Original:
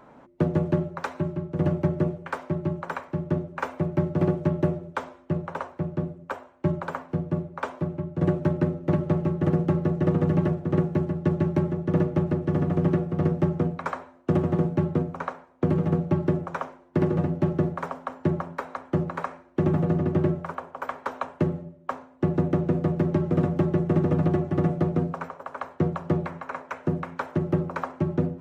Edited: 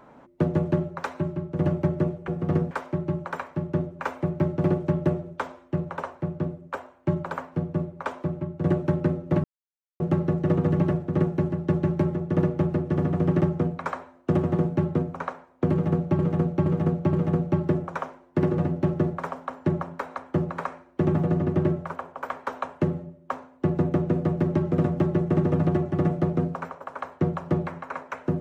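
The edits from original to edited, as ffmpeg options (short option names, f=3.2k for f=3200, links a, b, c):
-filter_complex "[0:a]asplit=9[a][b][c][d][e][f][g][h][i];[a]atrim=end=2.282[j];[b]atrim=start=12.978:end=13.412[k];[c]atrim=start=2.278:end=9.01,asetpts=PTS-STARTPTS,afade=t=out:st=6.728:d=0.004:c=hsin[l];[d]atrim=start=9.01:end=9.57,asetpts=PTS-STARTPTS,volume=0[m];[e]atrim=start=9.57:end=12.982,asetpts=PTS-STARTPTS,afade=t=in:d=0.004:c=hsin[n];[f]atrim=start=13.408:end=16.192[o];[g]atrim=start=15.718:end=16.192[p];[h]atrim=start=15.718:end=16.192[q];[i]atrim=start=15.718[r];[j][k]acrossfade=d=0.004:c1=hsin:c2=hsin[s];[l][m][n]concat=n=3:v=0:a=1[t];[s][t]acrossfade=d=0.004:c1=hsin:c2=hsin[u];[u][o]acrossfade=d=0.004:c1=hsin:c2=hsin[v];[v][p]acrossfade=d=0.004:c1=hsin:c2=hsin[w];[w][q]acrossfade=d=0.004:c1=hsin:c2=hsin[x];[x][r]acrossfade=d=0.004:c1=hsin:c2=hsin"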